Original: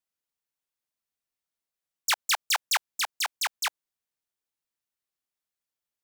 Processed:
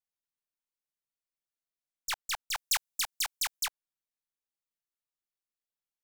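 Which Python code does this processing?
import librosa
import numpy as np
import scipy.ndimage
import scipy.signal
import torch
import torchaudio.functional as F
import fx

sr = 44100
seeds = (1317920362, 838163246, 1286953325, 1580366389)

y = np.where(x < 0.0, 10.0 ** (-3.0 / 20.0) * x, x)
y = fx.high_shelf(y, sr, hz=3700.0, db=10.5, at=(2.55, 3.65), fade=0.02)
y = y * 10.0 ** (-7.5 / 20.0)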